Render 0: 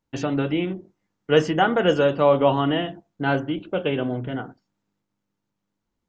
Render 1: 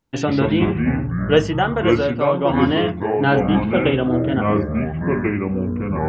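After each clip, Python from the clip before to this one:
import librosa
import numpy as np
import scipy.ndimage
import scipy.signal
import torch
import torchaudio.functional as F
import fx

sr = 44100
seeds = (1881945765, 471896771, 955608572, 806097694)

y = fx.rider(x, sr, range_db=10, speed_s=0.5)
y = fx.echo_pitch(y, sr, ms=96, semitones=-5, count=3, db_per_echo=-3.0)
y = y * librosa.db_to_amplitude(1.5)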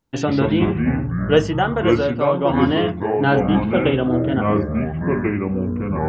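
y = fx.peak_eq(x, sr, hz=2300.0, db=-2.5, octaves=0.77)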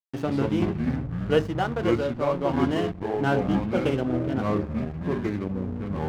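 y = fx.backlash(x, sr, play_db=-23.0)
y = y * librosa.db_to_amplitude(-6.5)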